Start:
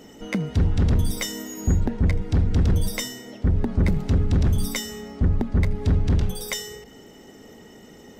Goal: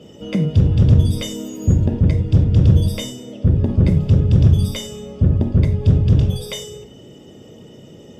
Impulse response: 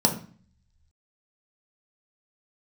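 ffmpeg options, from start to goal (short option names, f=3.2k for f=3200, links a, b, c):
-filter_complex "[1:a]atrim=start_sample=2205,atrim=end_sample=3087,asetrate=27342,aresample=44100[a];[0:a][a]afir=irnorm=-1:irlink=0,volume=-15.5dB"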